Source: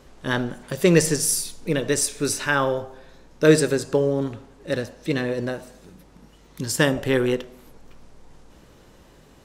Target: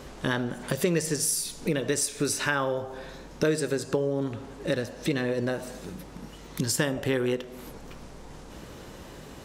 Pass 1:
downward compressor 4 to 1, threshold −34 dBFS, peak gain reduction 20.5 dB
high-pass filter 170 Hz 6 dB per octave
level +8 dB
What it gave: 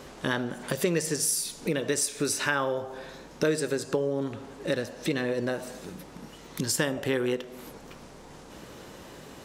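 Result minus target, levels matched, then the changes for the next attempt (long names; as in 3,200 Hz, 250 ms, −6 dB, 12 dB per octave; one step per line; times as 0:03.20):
125 Hz band −3.0 dB
change: high-pass filter 44 Hz 6 dB per octave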